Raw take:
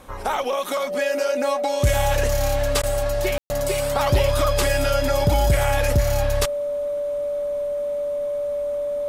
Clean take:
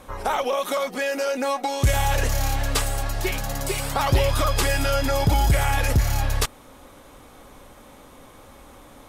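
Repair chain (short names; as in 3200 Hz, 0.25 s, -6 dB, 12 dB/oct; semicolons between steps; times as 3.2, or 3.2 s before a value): notch 580 Hz, Q 30; room tone fill 3.38–3.5; interpolate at 2.82, 12 ms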